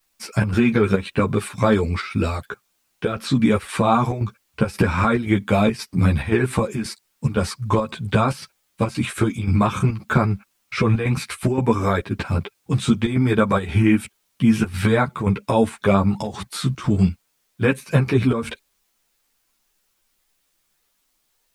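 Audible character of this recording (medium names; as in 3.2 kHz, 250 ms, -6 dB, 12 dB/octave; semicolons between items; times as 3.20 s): chopped level 1.9 Hz, depth 60%, duty 80%; a quantiser's noise floor 12-bit, dither triangular; a shimmering, thickened sound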